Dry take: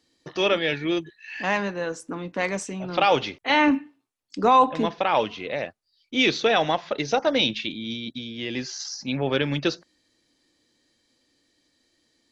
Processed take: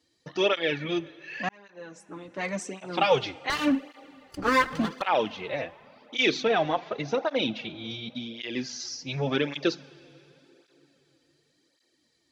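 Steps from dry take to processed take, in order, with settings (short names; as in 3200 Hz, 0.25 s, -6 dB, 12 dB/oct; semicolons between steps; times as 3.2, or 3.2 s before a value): 3.5–5.02 minimum comb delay 0.65 ms; 6.43–7.79 high shelf 3600 Hz -11.5 dB; plate-style reverb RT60 3.8 s, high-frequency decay 0.85×, DRR 19 dB; 1.49–2.79 fade in; tape flanging out of phase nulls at 0.89 Hz, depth 5.3 ms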